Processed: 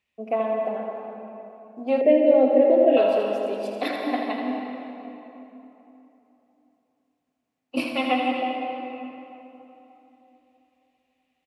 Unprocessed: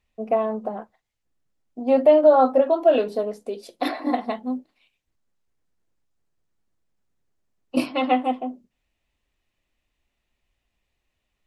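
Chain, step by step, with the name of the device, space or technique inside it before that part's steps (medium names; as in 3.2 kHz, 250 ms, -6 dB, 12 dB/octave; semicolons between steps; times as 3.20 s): PA in a hall (high-pass 130 Hz 12 dB/octave; peaking EQ 2.5 kHz +7 dB 0.91 oct; delay 81 ms -7 dB; reverberation RT60 3.2 s, pre-delay 119 ms, DRR 2 dB); 2.01–2.97 s: FFT filter 170 Hz 0 dB, 430 Hz +11 dB, 1.3 kHz -23 dB, 1.9 kHz +2 dB, 5.4 kHz -16 dB; trim -4.5 dB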